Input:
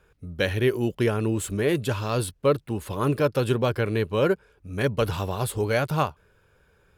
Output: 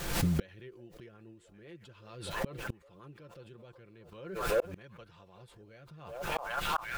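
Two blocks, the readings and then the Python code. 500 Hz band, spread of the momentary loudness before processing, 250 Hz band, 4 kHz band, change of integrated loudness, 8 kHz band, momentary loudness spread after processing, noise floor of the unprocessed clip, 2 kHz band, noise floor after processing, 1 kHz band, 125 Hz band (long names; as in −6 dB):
−15.0 dB, 5 LU, −13.5 dB, −8.5 dB, −10.0 dB, −8.5 dB, 22 LU, −63 dBFS, −9.0 dB, −60 dBFS, −8.0 dB, −13.5 dB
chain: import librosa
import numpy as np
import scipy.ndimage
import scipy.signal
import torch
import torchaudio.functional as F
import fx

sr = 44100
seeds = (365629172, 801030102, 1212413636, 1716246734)

p1 = fx.low_shelf(x, sr, hz=180.0, db=5.5)
p2 = p1 + fx.echo_stepped(p1, sr, ms=378, hz=690.0, octaves=0.7, feedback_pct=70, wet_db=-9.5, dry=0)
p3 = fx.rotary_switch(p2, sr, hz=7.5, then_hz=0.65, switch_at_s=3.51)
p4 = scipy.signal.sosfilt(scipy.signal.butter(2, 5200.0, 'lowpass', fs=sr, output='sos'), p3)
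p5 = fx.low_shelf(p4, sr, hz=480.0, db=-5.5)
p6 = fx.dmg_noise_colour(p5, sr, seeds[0], colour='pink', level_db=-60.0)
p7 = fx.rider(p6, sr, range_db=5, speed_s=2.0)
p8 = p6 + F.gain(torch.from_numpy(p7), 1.0).numpy()
p9 = p8 + 0.5 * np.pad(p8, (int(5.8 * sr / 1000.0), 0))[:len(p8)]
p10 = fx.gate_flip(p9, sr, shuts_db=-23.0, range_db=-38)
p11 = fx.pre_swell(p10, sr, db_per_s=57.0)
y = F.gain(torch.from_numpy(p11), 4.5).numpy()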